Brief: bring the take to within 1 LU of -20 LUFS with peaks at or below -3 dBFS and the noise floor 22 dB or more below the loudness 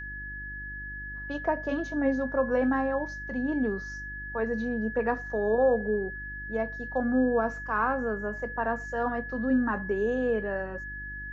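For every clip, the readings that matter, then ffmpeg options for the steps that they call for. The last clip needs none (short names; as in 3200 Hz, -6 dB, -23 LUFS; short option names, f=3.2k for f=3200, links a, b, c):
hum 50 Hz; harmonics up to 350 Hz; hum level -40 dBFS; steady tone 1700 Hz; tone level -37 dBFS; loudness -29.5 LUFS; peak -14.0 dBFS; loudness target -20.0 LUFS
-> -af "bandreject=f=50:t=h:w=4,bandreject=f=100:t=h:w=4,bandreject=f=150:t=h:w=4,bandreject=f=200:t=h:w=4,bandreject=f=250:t=h:w=4,bandreject=f=300:t=h:w=4,bandreject=f=350:t=h:w=4"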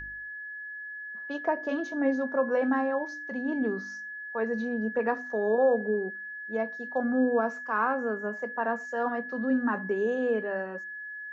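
hum none; steady tone 1700 Hz; tone level -37 dBFS
-> -af "bandreject=f=1.7k:w=30"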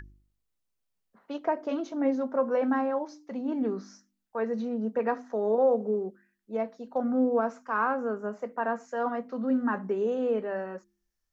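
steady tone none; loudness -29.5 LUFS; peak -14.0 dBFS; loudness target -20.0 LUFS
-> -af "volume=9.5dB"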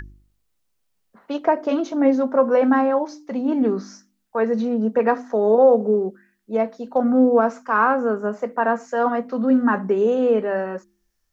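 loudness -20.0 LUFS; peak -4.5 dBFS; noise floor -70 dBFS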